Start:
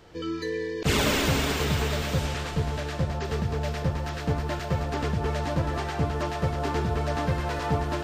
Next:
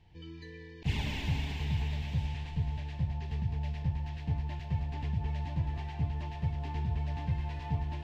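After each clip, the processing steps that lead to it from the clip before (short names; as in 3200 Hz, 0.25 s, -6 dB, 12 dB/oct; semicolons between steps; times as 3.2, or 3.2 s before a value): EQ curve 120 Hz 0 dB, 540 Hz -22 dB, 880 Hz -7 dB, 1300 Hz -28 dB, 1800 Hz -11 dB, 2700 Hz -7 dB, 9100 Hz -23 dB; gain -3 dB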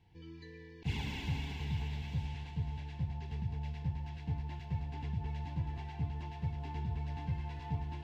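notch comb 610 Hz; gain -3 dB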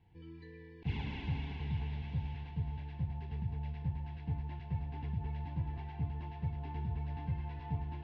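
air absorption 270 m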